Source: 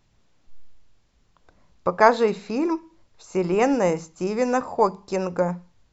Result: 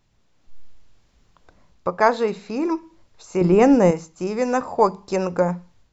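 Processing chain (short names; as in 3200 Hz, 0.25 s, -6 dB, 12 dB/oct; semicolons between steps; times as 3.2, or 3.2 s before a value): 3.41–3.91 low shelf 470 Hz +10.5 dB; AGC gain up to 6 dB; gain -1.5 dB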